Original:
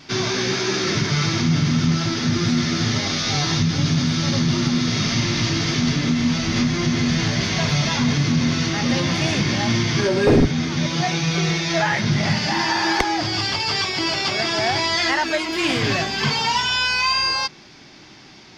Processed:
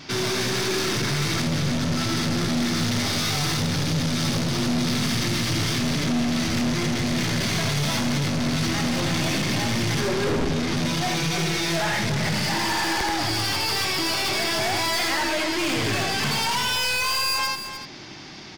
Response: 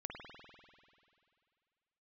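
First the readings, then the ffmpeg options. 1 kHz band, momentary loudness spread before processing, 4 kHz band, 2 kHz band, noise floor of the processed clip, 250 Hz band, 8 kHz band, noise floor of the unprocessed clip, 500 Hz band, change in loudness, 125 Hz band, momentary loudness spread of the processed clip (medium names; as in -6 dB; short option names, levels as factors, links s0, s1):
-3.0 dB, 3 LU, -3.0 dB, -3.0 dB, -34 dBFS, -4.0 dB, -0.5 dB, -45 dBFS, -3.5 dB, -3.5 dB, -5.0 dB, 2 LU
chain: -filter_complex "[0:a]asplit=2[s0][s1];[s1]aecho=0:1:83:0.501[s2];[s0][s2]amix=inputs=2:normalize=0,aeval=exprs='(tanh(20*val(0)+0.25)-tanh(0.25))/20':c=same,asplit=2[s3][s4];[s4]aecho=0:1:300:0.316[s5];[s3][s5]amix=inputs=2:normalize=0,volume=1.5"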